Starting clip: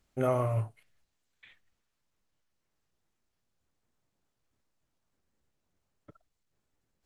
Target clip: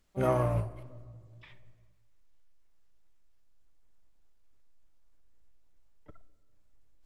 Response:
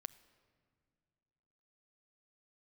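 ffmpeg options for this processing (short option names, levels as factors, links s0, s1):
-filter_complex "[0:a]asplit=3[s0][s1][s2];[s1]asetrate=22050,aresample=44100,atempo=2,volume=0.316[s3];[s2]asetrate=66075,aresample=44100,atempo=0.66742,volume=0.2[s4];[s0][s3][s4]amix=inputs=3:normalize=0,asubboost=boost=7:cutoff=51[s5];[1:a]atrim=start_sample=2205[s6];[s5][s6]afir=irnorm=-1:irlink=0,volume=1.78"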